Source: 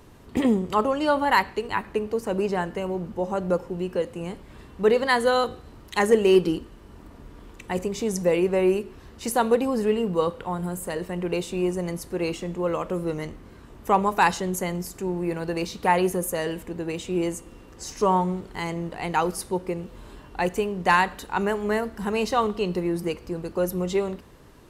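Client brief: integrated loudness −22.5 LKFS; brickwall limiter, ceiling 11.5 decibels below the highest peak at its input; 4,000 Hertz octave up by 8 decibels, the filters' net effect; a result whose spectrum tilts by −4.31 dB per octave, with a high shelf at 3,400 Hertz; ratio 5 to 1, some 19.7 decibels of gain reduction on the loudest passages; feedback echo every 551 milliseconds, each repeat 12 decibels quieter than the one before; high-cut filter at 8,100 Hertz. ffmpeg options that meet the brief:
ffmpeg -i in.wav -af "lowpass=8100,highshelf=frequency=3400:gain=7.5,equalizer=frequency=4000:width_type=o:gain=5.5,acompressor=threshold=-36dB:ratio=5,alimiter=level_in=5.5dB:limit=-24dB:level=0:latency=1,volume=-5.5dB,aecho=1:1:551|1102|1653:0.251|0.0628|0.0157,volume=17.5dB" out.wav

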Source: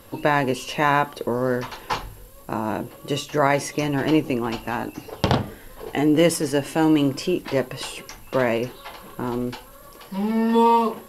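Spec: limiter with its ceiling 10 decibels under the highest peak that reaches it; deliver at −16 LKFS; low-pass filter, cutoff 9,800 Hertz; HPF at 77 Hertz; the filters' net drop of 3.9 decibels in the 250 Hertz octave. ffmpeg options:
ffmpeg -i in.wav -af "highpass=77,lowpass=9800,equalizer=frequency=250:width_type=o:gain=-5,volume=10.5dB,alimiter=limit=-2dB:level=0:latency=1" out.wav

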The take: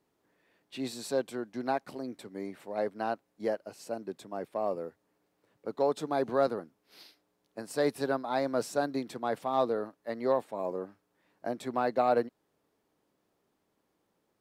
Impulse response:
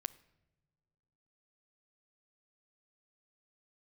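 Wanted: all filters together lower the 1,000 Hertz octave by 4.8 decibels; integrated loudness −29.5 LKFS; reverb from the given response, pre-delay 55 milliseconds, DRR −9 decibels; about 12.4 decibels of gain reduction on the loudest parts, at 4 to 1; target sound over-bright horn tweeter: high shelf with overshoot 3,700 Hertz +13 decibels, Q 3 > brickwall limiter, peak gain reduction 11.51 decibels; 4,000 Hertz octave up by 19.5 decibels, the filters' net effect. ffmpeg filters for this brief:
-filter_complex "[0:a]equalizer=frequency=1000:width_type=o:gain=-6.5,equalizer=frequency=4000:width_type=o:gain=7.5,acompressor=threshold=-39dB:ratio=4,asplit=2[link_01][link_02];[1:a]atrim=start_sample=2205,adelay=55[link_03];[link_02][link_03]afir=irnorm=-1:irlink=0,volume=11dB[link_04];[link_01][link_04]amix=inputs=2:normalize=0,highshelf=frequency=3700:width_type=q:width=3:gain=13,volume=1dB,alimiter=limit=-16.5dB:level=0:latency=1"

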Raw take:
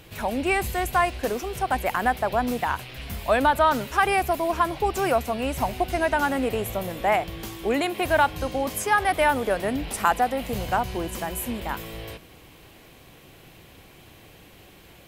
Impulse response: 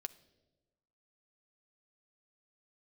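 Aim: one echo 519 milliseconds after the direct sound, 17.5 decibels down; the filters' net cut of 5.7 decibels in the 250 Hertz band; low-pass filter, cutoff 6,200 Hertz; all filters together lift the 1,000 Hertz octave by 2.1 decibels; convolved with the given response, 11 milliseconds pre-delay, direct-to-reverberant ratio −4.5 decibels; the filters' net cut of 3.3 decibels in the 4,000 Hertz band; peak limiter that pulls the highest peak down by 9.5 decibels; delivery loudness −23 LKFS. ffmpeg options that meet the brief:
-filter_complex "[0:a]lowpass=6200,equalizer=frequency=250:width_type=o:gain=-7.5,equalizer=frequency=1000:width_type=o:gain=3.5,equalizer=frequency=4000:width_type=o:gain=-4.5,alimiter=limit=-13.5dB:level=0:latency=1,aecho=1:1:519:0.133,asplit=2[link_01][link_02];[1:a]atrim=start_sample=2205,adelay=11[link_03];[link_02][link_03]afir=irnorm=-1:irlink=0,volume=7.5dB[link_04];[link_01][link_04]amix=inputs=2:normalize=0,volume=-2.5dB"

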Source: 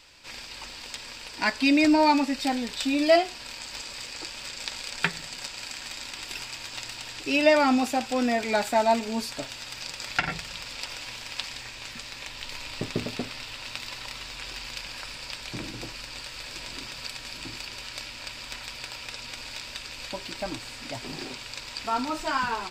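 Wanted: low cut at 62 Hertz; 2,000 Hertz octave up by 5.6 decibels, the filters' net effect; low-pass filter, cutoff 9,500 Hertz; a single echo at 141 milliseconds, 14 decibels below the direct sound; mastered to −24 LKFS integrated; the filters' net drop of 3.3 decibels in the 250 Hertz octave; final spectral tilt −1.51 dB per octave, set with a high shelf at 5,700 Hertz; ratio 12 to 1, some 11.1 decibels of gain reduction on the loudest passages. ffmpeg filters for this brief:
ffmpeg -i in.wav -af "highpass=62,lowpass=9500,equalizer=frequency=250:width_type=o:gain=-4,equalizer=frequency=2000:width_type=o:gain=6,highshelf=frequency=5700:gain=8,acompressor=threshold=-24dB:ratio=12,aecho=1:1:141:0.2,volume=6.5dB" out.wav

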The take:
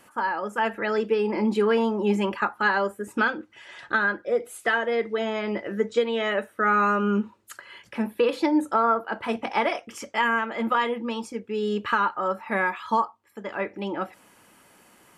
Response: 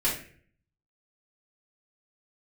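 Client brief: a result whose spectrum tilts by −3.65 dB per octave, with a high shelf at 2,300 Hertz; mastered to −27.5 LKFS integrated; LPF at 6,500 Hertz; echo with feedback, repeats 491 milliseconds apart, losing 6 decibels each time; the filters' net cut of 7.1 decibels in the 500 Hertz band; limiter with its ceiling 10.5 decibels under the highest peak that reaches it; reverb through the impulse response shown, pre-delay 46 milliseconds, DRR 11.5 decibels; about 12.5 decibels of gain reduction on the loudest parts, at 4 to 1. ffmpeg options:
-filter_complex "[0:a]lowpass=6500,equalizer=frequency=500:width_type=o:gain=-9,highshelf=frequency=2300:gain=8,acompressor=threshold=-33dB:ratio=4,alimiter=level_in=5.5dB:limit=-24dB:level=0:latency=1,volume=-5.5dB,aecho=1:1:491|982|1473|1964|2455|2946:0.501|0.251|0.125|0.0626|0.0313|0.0157,asplit=2[link_01][link_02];[1:a]atrim=start_sample=2205,adelay=46[link_03];[link_02][link_03]afir=irnorm=-1:irlink=0,volume=-21.5dB[link_04];[link_01][link_04]amix=inputs=2:normalize=0,volume=9.5dB"

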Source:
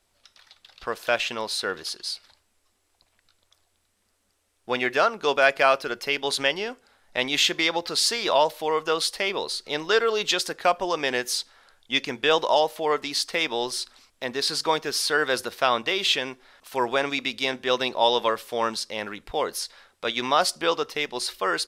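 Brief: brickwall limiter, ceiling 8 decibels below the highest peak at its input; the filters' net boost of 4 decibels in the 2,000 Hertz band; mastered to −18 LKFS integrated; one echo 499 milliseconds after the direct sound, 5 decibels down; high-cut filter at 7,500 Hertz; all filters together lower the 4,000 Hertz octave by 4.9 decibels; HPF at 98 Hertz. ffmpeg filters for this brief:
ffmpeg -i in.wav -af "highpass=98,lowpass=7500,equalizer=frequency=2000:width_type=o:gain=7.5,equalizer=frequency=4000:width_type=o:gain=-8.5,alimiter=limit=-10.5dB:level=0:latency=1,aecho=1:1:499:0.562,volume=6.5dB" out.wav

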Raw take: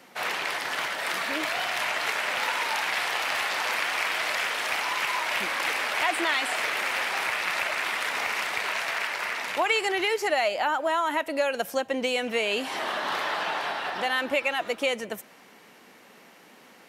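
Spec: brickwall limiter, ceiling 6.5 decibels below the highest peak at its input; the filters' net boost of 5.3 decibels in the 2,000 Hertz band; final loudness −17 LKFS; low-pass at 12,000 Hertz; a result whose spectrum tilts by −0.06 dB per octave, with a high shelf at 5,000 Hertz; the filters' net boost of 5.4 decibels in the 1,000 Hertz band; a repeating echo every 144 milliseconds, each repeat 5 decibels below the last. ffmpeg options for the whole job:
ffmpeg -i in.wav -af "lowpass=12000,equalizer=frequency=1000:width_type=o:gain=5.5,equalizer=frequency=2000:width_type=o:gain=4,highshelf=frequency=5000:gain=6,alimiter=limit=-14dB:level=0:latency=1,aecho=1:1:144|288|432|576|720|864|1008:0.562|0.315|0.176|0.0988|0.0553|0.031|0.0173,volume=4.5dB" out.wav

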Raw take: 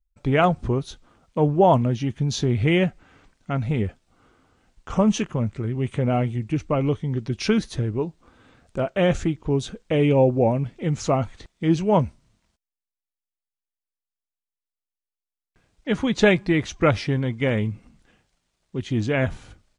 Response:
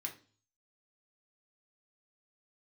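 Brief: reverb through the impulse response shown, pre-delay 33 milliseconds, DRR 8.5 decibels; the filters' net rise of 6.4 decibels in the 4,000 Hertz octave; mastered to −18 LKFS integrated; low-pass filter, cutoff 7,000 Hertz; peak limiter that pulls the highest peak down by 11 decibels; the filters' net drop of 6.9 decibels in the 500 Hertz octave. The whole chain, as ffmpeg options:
-filter_complex "[0:a]lowpass=7000,equalizer=frequency=500:width_type=o:gain=-9,equalizer=frequency=4000:width_type=o:gain=9,alimiter=limit=-17.5dB:level=0:latency=1,asplit=2[link_01][link_02];[1:a]atrim=start_sample=2205,adelay=33[link_03];[link_02][link_03]afir=irnorm=-1:irlink=0,volume=-7dB[link_04];[link_01][link_04]amix=inputs=2:normalize=0,volume=9.5dB"

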